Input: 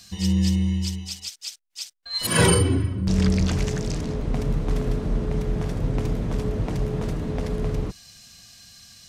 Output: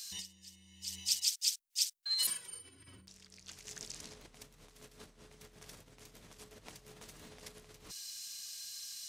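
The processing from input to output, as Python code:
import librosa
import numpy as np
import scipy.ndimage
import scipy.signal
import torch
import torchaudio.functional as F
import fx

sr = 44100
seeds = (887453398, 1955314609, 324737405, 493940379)

y = fx.high_shelf(x, sr, hz=8200.0, db=-4.0)
y = fx.over_compress(y, sr, threshold_db=-31.0, ratio=-1.0)
y = scipy.signal.lfilter([1.0, -0.97], [1.0], y)
y = F.gain(torch.from_numpy(y), -1.0).numpy()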